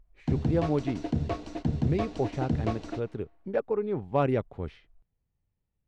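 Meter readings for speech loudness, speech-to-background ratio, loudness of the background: −31.5 LKFS, 1.0 dB, −32.5 LKFS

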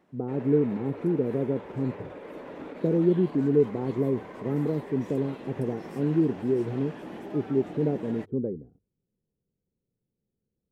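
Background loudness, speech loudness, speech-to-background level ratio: −41.5 LKFS, −28.0 LKFS, 13.5 dB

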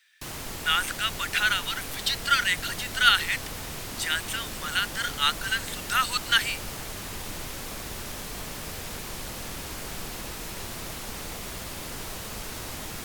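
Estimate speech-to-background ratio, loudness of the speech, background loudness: 10.0 dB, −25.5 LKFS, −35.5 LKFS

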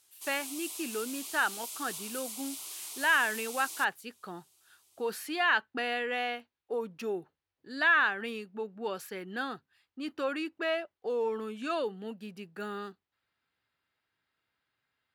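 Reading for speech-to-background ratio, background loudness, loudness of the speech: 7.0 dB, −39.5 LKFS, −32.5 LKFS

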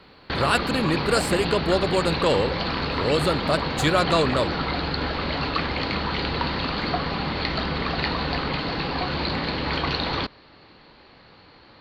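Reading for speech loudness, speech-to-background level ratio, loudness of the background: −24.0 LKFS, 2.0 dB, −26.0 LKFS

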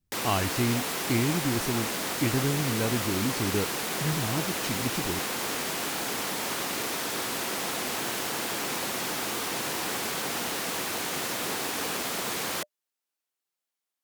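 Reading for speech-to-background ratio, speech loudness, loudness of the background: −1.5 dB, −31.0 LKFS, −29.5 LKFS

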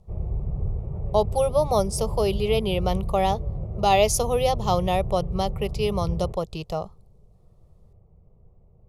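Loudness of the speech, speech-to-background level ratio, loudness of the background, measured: −24.5 LKFS, 7.5 dB, −32.0 LKFS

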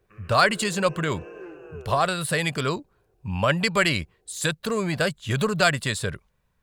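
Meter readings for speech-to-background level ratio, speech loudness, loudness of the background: 19.0 dB, −24.0 LKFS, −43.0 LKFS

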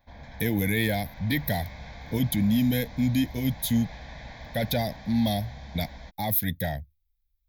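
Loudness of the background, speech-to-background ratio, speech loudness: −44.0 LKFS, 16.5 dB, −27.5 LKFS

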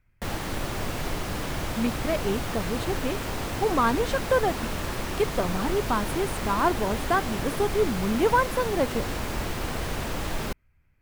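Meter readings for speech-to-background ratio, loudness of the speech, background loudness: 4.0 dB, −27.5 LKFS, −31.5 LKFS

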